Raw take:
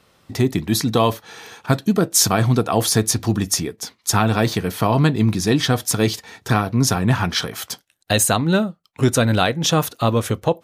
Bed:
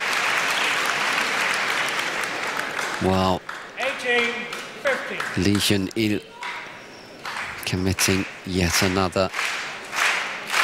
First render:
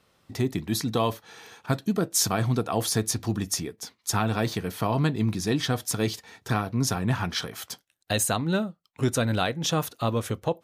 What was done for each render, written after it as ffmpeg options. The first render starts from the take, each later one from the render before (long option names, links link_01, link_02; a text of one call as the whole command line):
ffmpeg -i in.wav -af "volume=-8dB" out.wav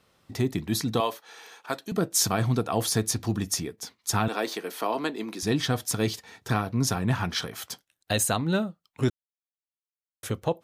ffmpeg -i in.wav -filter_complex "[0:a]asettb=1/sr,asplit=3[link_01][link_02][link_03];[link_01]atrim=end=1.004[link_04];[link_02]atrim=start=1:end=1.92,asetpts=PTS-STARTPTS,afade=type=in:duration=0.004:curve=qsin,afade=type=out:start_time=0.916:duration=0.004:curve=qsin,highpass=430[link_05];[link_03]atrim=start=1.916[link_06];[link_04][link_05]acrossfade=duration=0.004:curve1=hsin:curve2=qsin[link_07];[link_07][link_06]acrossfade=duration=0.004:curve1=qsin:curve2=hsin,asettb=1/sr,asplit=3[link_08][link_09][link_10];[link_08]atrim=end=4.284[link_11];[link_09]atrim=start=4.28:end=5.43,asetpts=PTS-STARTPTS,afade=type=in:duration=0.004:curve=qsin,afade=type=out:start_time=1.146:duration=0.004:curve=qsin,highpass=frequency=290:width=0.5412,highpass=frequency=290:width=1.3066[link_12];[link_10]atrim=start=5.426[link_13];[link_11][link_12]acrossfade=duration=0.004:curve1=hsin:curve2=qsin[link_14];[link_14][link_13]acrossfade=duration=0.004:curve1=qsin:curve2=hsin,asplit=3[link_15][link_16][link_17];[link_15]atrim=end=9.1,asetpts=PTS-STARTPTS,afade=type=out:start_time=9.096:duration=0.004:curve=hsin[link_18];[link_16]atrim=start=9.1:end=10.23,asetpts=PTS-STARTPTS,volume=0[link_19];[link_17]atrim=start=10.23,asetpts=PTS-STARTPTS,afade=type=in:duration=0.004:curve=hsin[link_20];[link_18][link_19][link_20]concat=n=3:v=0:a=1" out.wav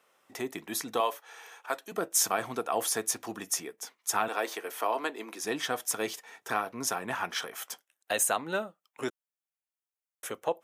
ffmpeg -i in.wav -af "highpass=500,equalizer=frequency=4300:width_type=o:width=0.61:gain=-10" out.wav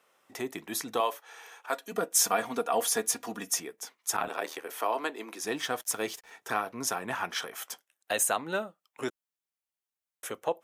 ffmpeg -i in.wav -filter_complex "[0:a]asettb=1/sr,asplit=3[link_01][link_02][link_03];[link_01]atrim=end=1.724[link_04];[link_02]atrim=start=1.72:end=3.6,asetpts=PTS-STARTPTS,afade=type=in:duration=0.004:curve=qsin,afade=type=out:start_time=1.876:duration=0.004:curve=qsin,aecho=1:1:4.2:0.65,atrim=end_sample=82908[link_05];[link_03]atrim=start=3.596[link_06];[link_04][link_05]acrossfade=duration=0.004:curve1=hsin:curve2=qsin[link_07];[link_07][link_06]acrossfade=duration=0.004:curve1=qsin:curve2=hsin,asplit=3[link_08][link_09][link_10];[link_08]afade=type=out:start_time=4.16:duration=0.02[link_11];[link_09]aeval=exprs='val(0)*sin(2*PI*39*n/s)':channel_layout=same,afade=type=in:start_time=4.16:duration=0.02,afade=type=out:start_time=4.67:duration=0.02[link_12];[link_10]afade=type=in:start_time=4.67:duration=0.02[link_13];[link_11][link_12][link_13]amix=inputs=3:normalize=0,asettb=1/sr,asplit=3[link_14][link_15][link_16];[link_14]atrim=end=5.474[link_17];[link_15]atrim=start=5.47:end=6.31,asetpts=PTS-STARTPTS,afade=type=in:duration=0.004:curve=qsin,afade=type=out:start_time=0.836:duration=0.004:curve=qsin,aeval=exprs='sgn(val(0))*max(abs(val(0))-0.0015,0)':channel_layout=same[link_18];[link_16]atrim=start=6.306[link_19];[link_17][link_18]acrossfade=duration=0.004:curve1=hsin:curve2=qsin[link_20];[link_20][link_19]acrossfade=duration=0.004:curve1=qsin:curve2=hsin" out.wav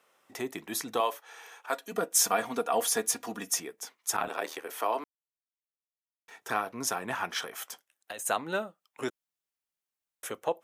ffmpeg -i in.wav -filter_complex "[0:a]asplit=3[link_01][link_02][link_03];[link_01]afade=type=out:start_time=7.67:duration=0.02[link_04];[link_02]acompressor=threshold=-35dB:ratio=16:attack=3.2:release=140:knee=1:detection=peak,afade=type=in:start_time=7.67:duration=0.02,afade=type=out:start_time=8.25:duration=0.02[link_05];[link_03]afade=type=in:start_time=8.25:duration=0.02[link_06];[link_04][link_05][link_06]amix=inputs=3:normalize=0,asplit=3[link_07][link_08][link_09];[link_07]atrim=end=5.04,asetpts=PTS-STARTPTS,afade=type=out:start_time=5.036:duration=0.004:curve=hsin[link_10];[link_08]atrim=start=5.04:end=6.28,asetpts=PTS-STARTPTS,volume=0[link_11];[link_09]atrim=start=6.28,asetpts=PTS-STARTPTS,afade=type=in:duration=0.004:curve=hsin[link_12];[link_10][link_11][link_12]concat=n=3:v=0:a=1" out.wav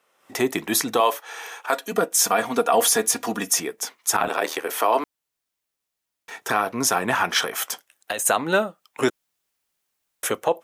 ffmpeg -i in.wav -af "dynaudnorm=framelen=180:gausssize=3:maxgain=13.5dB,alimiter=limit=-8dB:level=0:latency=1:release=55" out.wav